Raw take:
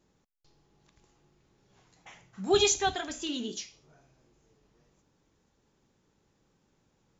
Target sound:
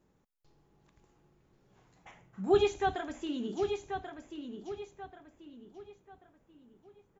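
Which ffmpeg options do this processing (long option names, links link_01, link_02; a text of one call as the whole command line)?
ffmpeg -i in.wav -filter_complex "[0:a]asetnsamples=nb_out_samples=441:pad=0,asendcmd='2.11 equalizer g -15',equalizer=frequency=5000:width_type=o:width=1.9:gain=-9,asplit=2[link_01][link_02];[link_02]adelay=1086,lowpass=frequency=4000:poles=1,volume=-7dB,asplit=2[link_03][link_04];[link_04]adelay=1086,lowpass=frequency=4000:poles=1,volume=0.36,asplit=2[link_05][link_06];[link_06]adelay=1086,lowpass=frequency=4000:poles=1,volume=0.36,asplit=2[link_07][link_08];[link_08]adelay=1086,lowpass=frequency=4000:poles=1,volume=0.36[link_09];[link_01][link_03][link_05][link_07][link_09]amix=inputs=5:normalize=0,acrossover=split=4300[link_10][link_11];[link_11]acompressor=threshold=-55dB:ratio=4:attack=1:release=60[link_12];[link_10][link_12]amix=inputs=2:normalize=0" out.wav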